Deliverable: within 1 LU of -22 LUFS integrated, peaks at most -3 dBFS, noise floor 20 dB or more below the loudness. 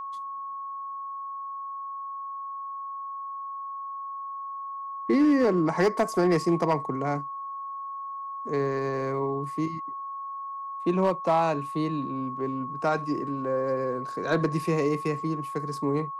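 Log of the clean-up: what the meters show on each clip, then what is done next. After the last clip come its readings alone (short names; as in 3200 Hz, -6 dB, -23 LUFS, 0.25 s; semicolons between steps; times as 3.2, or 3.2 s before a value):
clipped 0.4%; flat tops at -16.0 dBFS; steady tone 1100 Hz; tone level -33 dBFS; loudness -29.0 LUFS; peak -16.0 dBFS; loudness target -22.0 LUFS
-> clip repair -16 dBFS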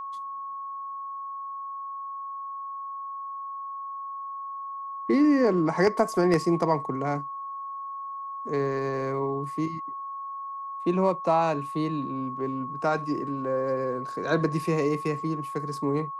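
clipped 0.0%; steady tone 1100 Hz; tone level -33 dBFS
-> notch 1100 Hz, Q 30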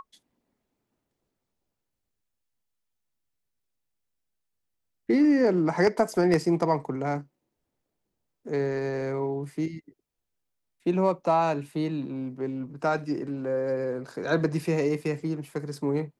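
steady tone none; loudness -27.0 LUFS; peak -7.0 dBFS; loudness target -22.0 LUFS
-> gain +5 dB; limiter -3 dBFS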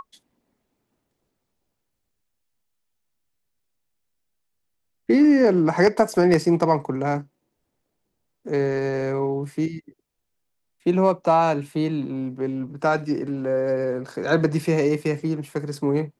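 loudness -22.0 LUFS; peak -3.0 dBFS; noise floor -77 dBFS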